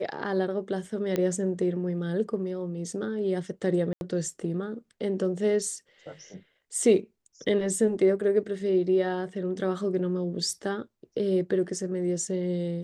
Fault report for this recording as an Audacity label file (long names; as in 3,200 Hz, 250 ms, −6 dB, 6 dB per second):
1.160000	1.160000	click −15 dBFS
3.930000	4.010000	drop-out 81 ms